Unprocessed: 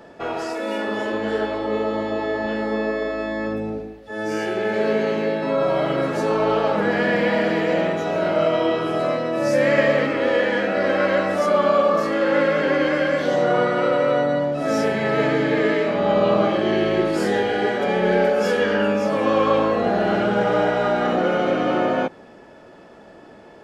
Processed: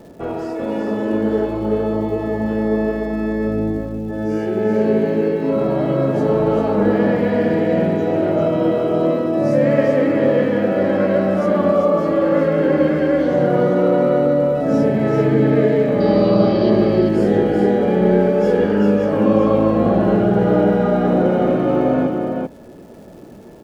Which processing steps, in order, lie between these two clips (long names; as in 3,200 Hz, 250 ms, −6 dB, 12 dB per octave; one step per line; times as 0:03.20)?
tilt shelving filter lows +10 dB, about 660 Hz
surface crackle 400 per second −44 dBFS
0:16.00–0:16.70: low-pass with resonance 4,700 Hz, resonance Q 15
single-tap delay 389 ms −4.5 dB